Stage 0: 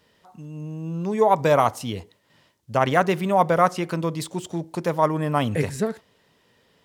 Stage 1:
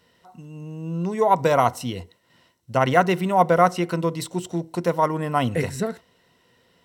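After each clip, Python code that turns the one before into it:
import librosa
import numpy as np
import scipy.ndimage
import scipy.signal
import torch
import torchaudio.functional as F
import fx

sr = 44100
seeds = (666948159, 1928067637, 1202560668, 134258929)

y = fx.ripple_eq(x, sr, per_octave=2.0, db=7)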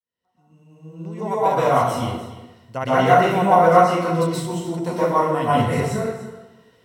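y = fx.fade_in_head(x, sr, length_s=1.94)
y = y + 10.0 ** (-15.0 / 20.0) * np.pad(y, (int(293 * sr / 1000.0), 0))[:len(y)]
y = fx.rev_plate(y, sr, seeds[0], rt60_s=1.0, hf_ratio=0.65, predelay_ms=110, drr_db=-9.5)
y = F.gain(torch.from_numpy(y), -7.5).numpy()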